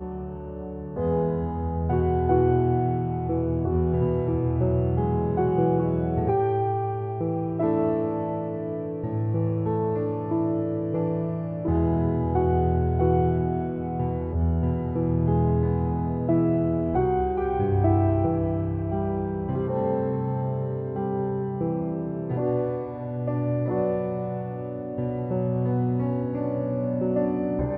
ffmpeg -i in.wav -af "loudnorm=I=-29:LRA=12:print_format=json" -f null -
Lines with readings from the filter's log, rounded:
"input_i" : "-25.7",
"input_tp" : "-9.0",
"input_lra" : "3.6",
"input_thresh" : "-35.7",